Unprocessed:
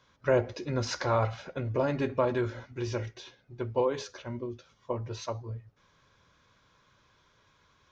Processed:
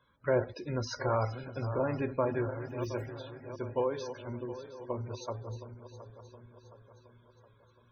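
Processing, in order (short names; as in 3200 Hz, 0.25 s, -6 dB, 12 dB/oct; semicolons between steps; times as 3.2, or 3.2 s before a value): regenerating reverse delay 0.359 s, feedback 70%, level -11 dB; 2.61–3.16 modulation noise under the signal 13 dB; loudest bins only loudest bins 64; gain -3.5 dB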